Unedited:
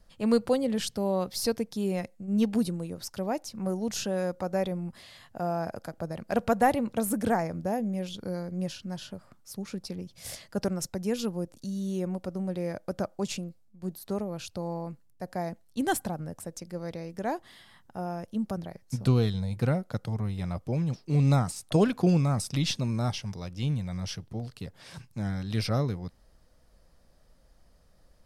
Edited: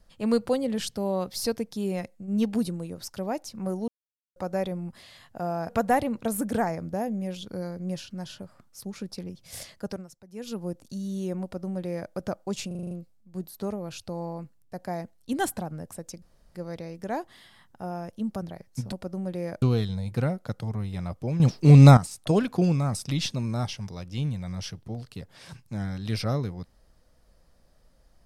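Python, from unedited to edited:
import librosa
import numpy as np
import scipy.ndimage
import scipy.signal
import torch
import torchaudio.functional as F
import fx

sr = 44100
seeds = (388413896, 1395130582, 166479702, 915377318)

y = fx.edit(x, sr, fx.silence(start_s=3.88, length_s=0.48),
    fx.cut(start_s=5.69, length_s=0.72),
    fx.fade_down_up(start_s=10.45, length_s=0.94, db=-18.0, fade_s=0.37),
    fx.duplicate(start_s=12.14, length_s=0.7, to_s=19.07),
    fx.stutter(start_s=13.39, slice_s=0.04, count=7),
    fx.insert_room_tone(at_s=16.7, length_s=0.33),
    fx.clip_gain(start_s=20.85, length_s=0.57, db=11.0), tone=tone)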